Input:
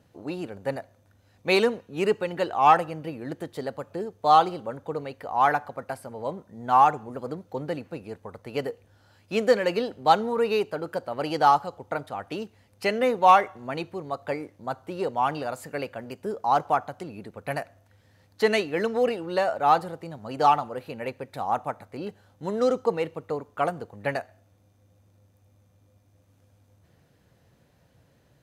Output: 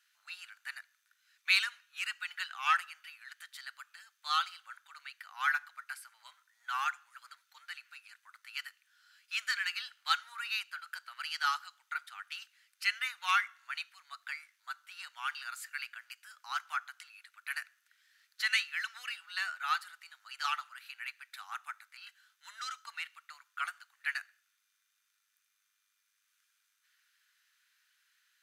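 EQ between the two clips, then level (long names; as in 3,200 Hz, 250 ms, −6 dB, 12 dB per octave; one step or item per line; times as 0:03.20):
elliptic high-pass filter 1,400 Hz, stop band 70 dB
0.0 dB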